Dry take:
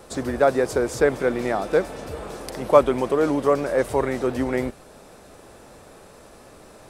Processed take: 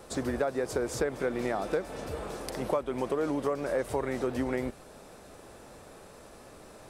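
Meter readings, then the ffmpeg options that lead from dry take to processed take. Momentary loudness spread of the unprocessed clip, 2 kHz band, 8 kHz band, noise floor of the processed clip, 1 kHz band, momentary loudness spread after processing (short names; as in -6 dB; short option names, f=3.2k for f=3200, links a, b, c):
15 LU, -9.0 dB, -5.0 dB, -51 dBFS, -10.5 dB, 20 LU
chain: -af "acompressor=threshold=-22dB:ratio=10,volume=-3.5dB"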